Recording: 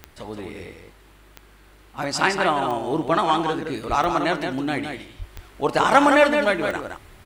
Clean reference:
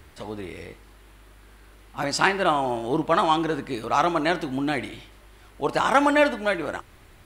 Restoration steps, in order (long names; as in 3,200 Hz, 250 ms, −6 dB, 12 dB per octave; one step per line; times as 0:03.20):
click removal
high-pass at the plosives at 0:03.88/0:05.18
echo removal 167 ms −6 dB
level 0 dB, from 0:05.23 −3 dB